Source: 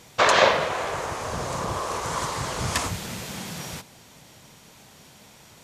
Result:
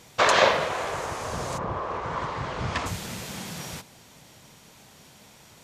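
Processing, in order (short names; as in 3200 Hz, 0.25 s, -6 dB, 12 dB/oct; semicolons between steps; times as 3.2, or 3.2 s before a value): 1.57–2.85 LPF 1800 Hz -> 3500 Hz 12 dB/oct; gain -1.5 dB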